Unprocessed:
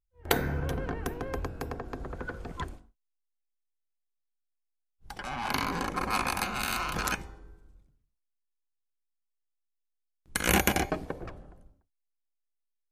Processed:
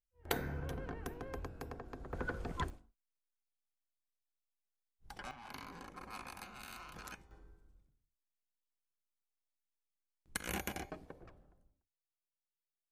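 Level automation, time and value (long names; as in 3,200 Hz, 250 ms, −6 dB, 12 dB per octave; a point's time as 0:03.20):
−10 dB
from 0:02.13 −2 dB
from 0:02.70 −8.5 dB
from 0:05.31 −19 dB
from 0:07.31 −9 dB
from 0:10.37 −16 dB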